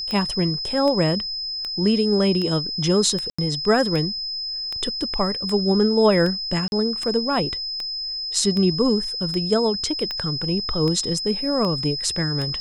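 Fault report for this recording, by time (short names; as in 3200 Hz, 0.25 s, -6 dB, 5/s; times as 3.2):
tick 78 rpm -15 dBFS
tone 5100 Hz -26 dBFS
3.3–3.38 gap 85 ms
6.68–6.72 gap 41 ms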